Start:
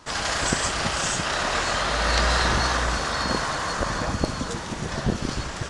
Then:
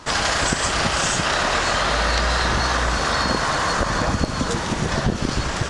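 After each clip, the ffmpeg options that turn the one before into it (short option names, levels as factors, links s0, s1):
-af "acompressor=threshold=0.0562:ratio=6,highshelf=f=9400:g=-4.5,volume=2.66"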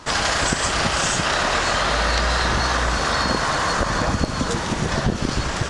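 -af anull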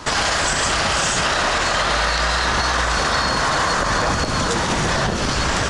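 -filter_complex "[0:a]acrossover=split=580|4300[s0][s1][s2];[s0]volume=21.1,asoftclip=hard,volume=0.0473[s3];[s3][s1][s2]amix=inputs=3:normalize=0,alimiter=limit=0.15:level=0:latency=1,volume=2.11"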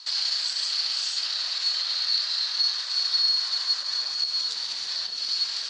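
-af "bandpass=f=4400:t=q:w=11:csg=0,volume=2.11"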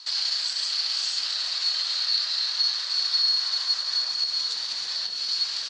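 -af "aecho=1:1:823:0.335"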